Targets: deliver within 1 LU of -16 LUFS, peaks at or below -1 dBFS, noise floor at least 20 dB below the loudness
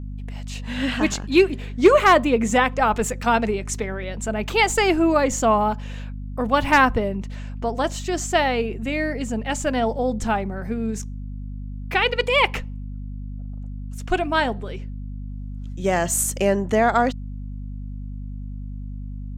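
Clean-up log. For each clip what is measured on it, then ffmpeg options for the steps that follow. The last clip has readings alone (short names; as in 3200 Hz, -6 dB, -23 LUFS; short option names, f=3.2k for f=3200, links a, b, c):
hum 50 Hz; harmonics up to 250 Hz; hum level -29 dBFS; loudness -21.0 LUFS; peak -4.5 dBFS; loudness target -16.0 LUFS
-> -af "bandreject=f=50:t=h:w=6,bandreject=f=100:t=h:w=6,bandreject=f=150:t=h:w=6,bandreject=f=200:t=h:w=6,bandreject=f=250:t=h:w=6"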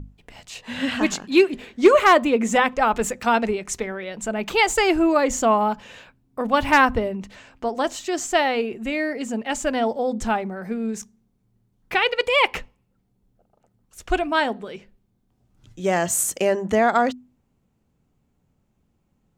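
hum none; loudness -21.0 LUFS; peak -4.5 dBFS; loudness target -16.0 LUFS
-> -af "volume=5dB,alimiter=limit=-1dB:level=0:latency=1"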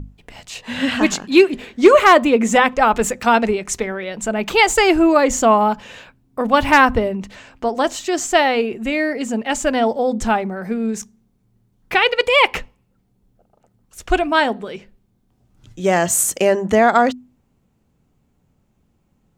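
loudness -16.5 LUFS; peak -1.0 dBFS; noise floor -64 dBFS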